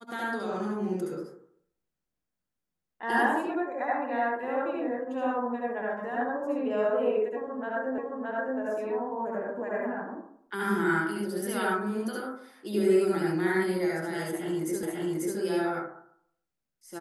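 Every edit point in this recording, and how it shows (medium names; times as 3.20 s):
7.98 s: repeat of the last 0.62 s
14.83 s: repeat of the last 0.54 s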